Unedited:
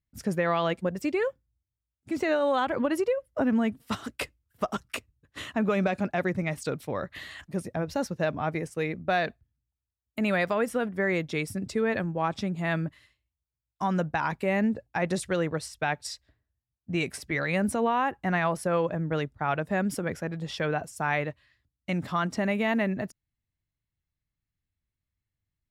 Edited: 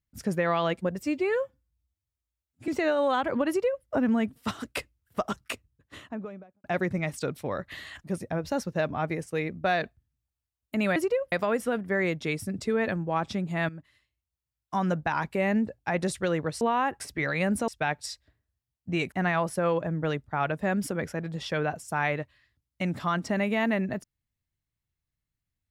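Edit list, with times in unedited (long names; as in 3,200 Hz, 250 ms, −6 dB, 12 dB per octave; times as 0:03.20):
0:01.00–0:02.12: time-stretch 1.5×
0:02.92–0:03.28: duplicate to 0:10.40
0:04.91–0:06.08: fade out and dull
0:12.77–0:13.87: fade in equal-power, from −15 dB
0:15.69–0:17.13: swap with 0:17.81–0:18.20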